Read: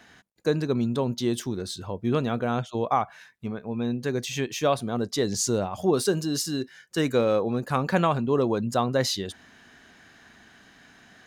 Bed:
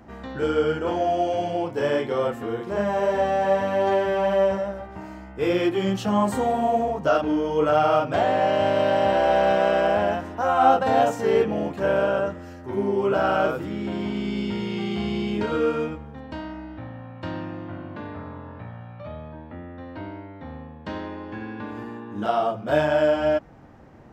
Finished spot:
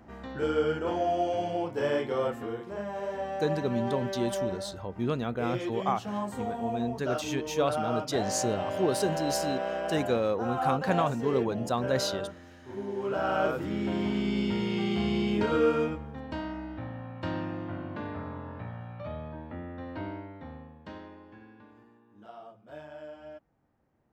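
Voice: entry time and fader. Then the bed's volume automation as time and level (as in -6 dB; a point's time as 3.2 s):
2.95 s, -5.0 dB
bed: 2.4 s -5 dB
2.82 s -12 dB
12.86 s -12 dB
13.74 s -1.5 dB
20.12 s -1.5 dB
21.99 s -24.5 dB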